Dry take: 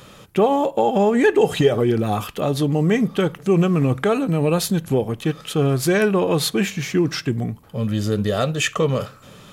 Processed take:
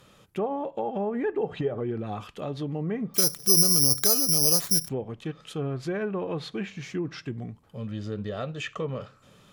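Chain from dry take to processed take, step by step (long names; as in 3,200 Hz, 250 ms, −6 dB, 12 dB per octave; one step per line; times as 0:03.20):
treble cut that deepens with the level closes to 1,400 Hz, closed at −12.5 dBFS
0:03.14–0:04.89: bad sample-rate conversion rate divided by 8×, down none, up zero stuff
level −12 dB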